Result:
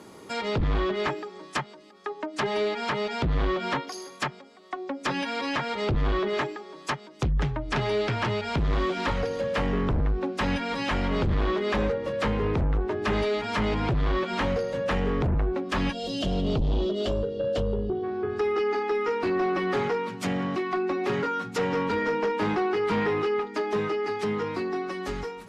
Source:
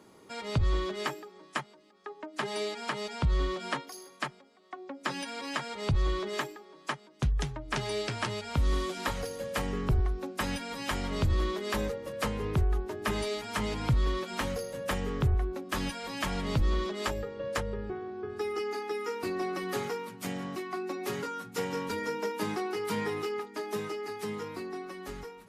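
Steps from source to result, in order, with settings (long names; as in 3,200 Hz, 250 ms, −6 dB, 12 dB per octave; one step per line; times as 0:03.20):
gain on a spectral selection 0:15.92–0:18.04, 750–2,700 Hz −20 dB
harmonic generator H 5 −8 dB, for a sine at −18 dBFS
treble cut that deepens with the level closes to 3,000 Hz, closed at −24 dBFS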